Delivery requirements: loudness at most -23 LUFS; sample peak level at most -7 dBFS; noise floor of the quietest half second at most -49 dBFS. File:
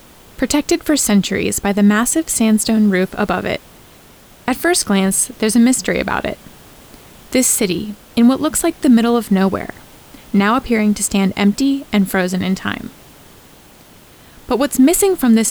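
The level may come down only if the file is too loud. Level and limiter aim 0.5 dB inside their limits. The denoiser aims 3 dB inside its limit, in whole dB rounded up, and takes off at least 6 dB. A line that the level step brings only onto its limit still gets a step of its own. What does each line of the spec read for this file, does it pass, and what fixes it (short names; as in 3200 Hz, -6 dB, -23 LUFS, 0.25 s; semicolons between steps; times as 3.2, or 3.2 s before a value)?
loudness -15.5 LUFS: fail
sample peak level -3.5 dBFS: fail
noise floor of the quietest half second -44 dBFS: fail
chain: gain -8 dB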